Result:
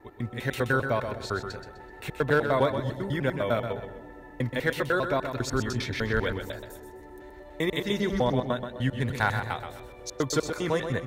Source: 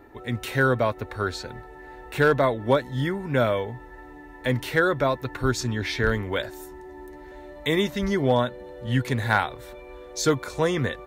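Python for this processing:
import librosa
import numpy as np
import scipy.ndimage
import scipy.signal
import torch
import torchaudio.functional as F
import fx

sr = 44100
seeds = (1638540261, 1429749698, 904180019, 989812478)

y = fx.block_reorder(x, sr, ms=100.0, group=2)
y = fx.echo_bbd(y, sr, ms=228, stages=1024, feedback_pct=52, wet_db=-16.5)
y = fx.echo_warbled(y, sr, ms=127, feedback_pct=33, rate_hz=2.8, cents=52, wet_db=-8.0)
y = F.gain(torch.from_numpy(y), -4.0).numpy()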